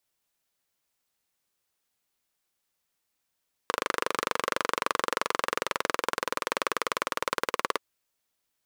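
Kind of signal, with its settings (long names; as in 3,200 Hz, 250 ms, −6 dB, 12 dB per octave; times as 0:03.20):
pulse-train model of a single-cylinder engine, changing speed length 4.09 s, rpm 3,000, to 2,200, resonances 510/1,100 Hz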